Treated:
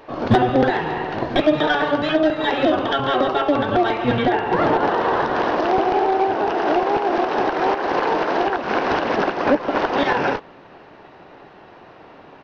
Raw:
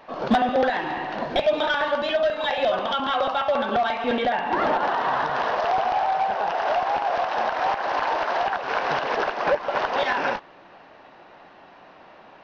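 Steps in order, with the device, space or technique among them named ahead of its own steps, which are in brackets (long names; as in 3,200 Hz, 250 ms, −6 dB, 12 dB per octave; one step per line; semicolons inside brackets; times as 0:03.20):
octave pedal (pitch-shifted copies added −12 semitones −1 dB)
level +2 dB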